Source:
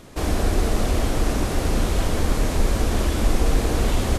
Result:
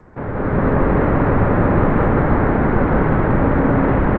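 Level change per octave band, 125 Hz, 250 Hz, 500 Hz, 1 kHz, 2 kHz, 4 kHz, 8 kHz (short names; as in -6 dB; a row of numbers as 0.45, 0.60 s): +7.0 dB, +10.0 dB, +9.0 dB, +10.0 dB, +8.0 dB, under -15 dB, under -40 dB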